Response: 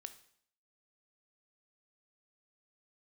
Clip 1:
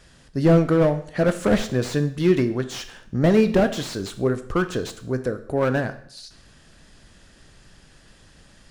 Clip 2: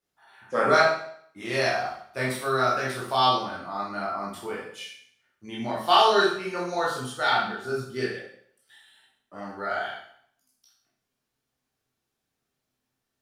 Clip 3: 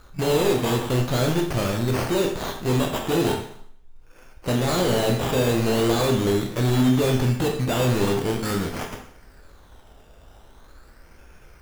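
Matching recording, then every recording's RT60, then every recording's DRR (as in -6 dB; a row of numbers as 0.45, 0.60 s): 1; 0.65, 0.65, 0.65 s; 10.0, -5.5, 1.5 dB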